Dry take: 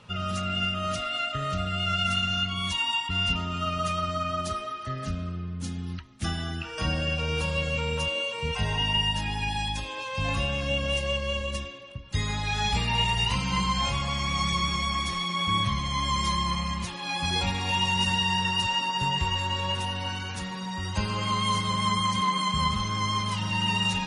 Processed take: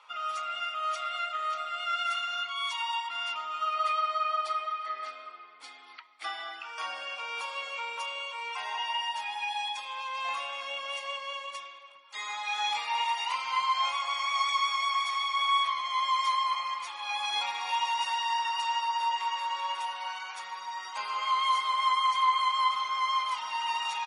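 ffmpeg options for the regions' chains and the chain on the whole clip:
-filter_complex "[0:a]asettb=1/sr,asplit=3[s0][s1][s2];[s0]atrim=end=3.744[s3];[s1]atrim=start=3.74:end=6.6,asetpts=PTS-STARTPTS,afade=t=in:d=0.004:c=qsin,afade=t=out:st=2.856:d=0.004:c=qsin,highpass=290,equalizer=f=300:t=q:w=4:g=9,equalizer=f=470:t=q:w=4:g=5,equalizer=f=710:t=q:w=4:g=4,equalizer=f=2100:t=q:w=4:g=6,equalizer=f=4300:t=q:w=4:g=4,equalizer=f=6400:t=q:w=4:g=-10,lowpass=f=9100:w=0.5412,lowpass=f=9100:w=1.3066,asoftclip=type=hard:threshold=0.1[s4];[s2]atrim=start=6.596[s5];[s3][s4]acrossfade=d=0.004:c1=hsin:c2=qsin[s6];[s6][s5]acrossfade=d=0.004:c1=qsin:c2=hsin,highpass=f=680:w=0.5412,highpass=f=680:w=1.3066,highshelf=f=3500:g=-10,aecho=1:1:0.9:0.43"

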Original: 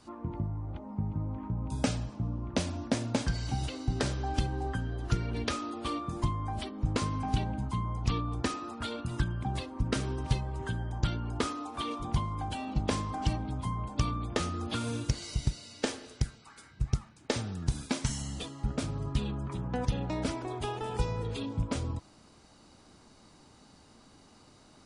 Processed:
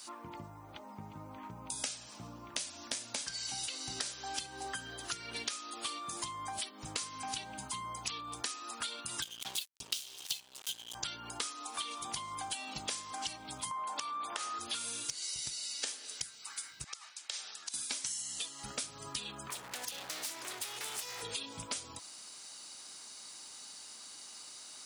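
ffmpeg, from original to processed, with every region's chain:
-filter_complex "[0:a]asettb=1/sr,asplit=3[s0][s1][s2];[s0]atrim=end=9.224[s3];[s1]atrim=start=9.22:end=10.95,asetpts=PTS-STARTPTS,afade=t=in:d=0.004:c=qsin,afade=t=out:st=1.726:d=0.004:c=qsin,lowpass=7900,highshelf=f=2300:t=q:w=3:g=10,aeval=exprs='sgn(val(0))*max(abs(val(0))-0.02,0)':c=same[s4];[s2]atrim=start=10.946[s5];[s3][s4]acrossfade=d=0.004:c1=hsin:c2=qsin[s6];[s6][s5]acrossfade=d=0.004:c1=qsin:c2=hsin,asettb=1/sr,asplit=3[s7][s8][s9];[s7]atrim=end=13.714[s10];[s8]atrim=start=13.71:end=14.59,asetpts=PTS-STARTPTS,afade=t=in:d=0.004:c=qsin,afade=t=out:st=0.876:d=0.004:c=qsin,highpass=220,equalizer=f=990:t=o:w=1.9:g=12.5,acompressor=threshold=0.0316:ratio=6:attack=3.2:release=140:knee=1:detection=peak[s11];[s9]atrim=start=14.586[s12];[s10][s11]acrossfade=d=0.004:c1=hsin:c2=qsin[s13];[s13][s12]acrossfade=d=0.004:c1=qsin:c2=hsin,asettb=1/sr,asplit=3[s14][s15][s16];[s14]atrim=end=16.844[s17];[s15]atrim=start=16.84:end=17.74,asetpts=PTS-STARTPTS,afade=t=in:d=0.004:c=qsin,afade=t=out:st=0.896:d=0.004:c=qsin,aemphasis=mode=production:type=50kf,acompressor=threshold=0.0126:ratio=6:attack=3.2:release=140:knee=1:detection=peak,highpass=640,lowpass=4800[s18];[s16]atrim=start=17.736[s19];[s17][s18]acrossfade=d=0.004:c1=hsin:c2=qsin[s20];[s20][s19]acrossfade=d=0.004:c1=qsin:c2=hsin,asettb=1/sr,asplit=3[s21][s22][s23];[s21]atrim=end=19.504[s24];[s22]atrim=start=19.5:end=21.22,asetpts=PTS-STARTPTS,afade=t=in:d=0.004:c=qsin,afade=t=out:st=1.716:d=0.004:c=qsin,acrossover=split=350|2600[s25][s26][s27];[s25]acompressor=threshold=0.0112:ratio=4[s28];[s26]acompressor=threshold=0.00794:ratio=4[s29];[s27]acompressor=threshold=0.00398:ratio=4[s30];[s28][s29][s30]amix=inputs=3:normalize=0,aeval=exprs='0.0133*(abs(mod(val(0)/0.0133+3,4)-2)-1)':c=same[s31];[s23]atrim=start=21.216[s32];[s24][s31]acrossfade=d=0.004:c1=hsin:c2=qsin[s33];[s33][s32]acrossfade=d=0.004:c1=qsin:c2=hsin,aderivative,acompressor=threshold=0.002:ratio=6,volume=7.5"

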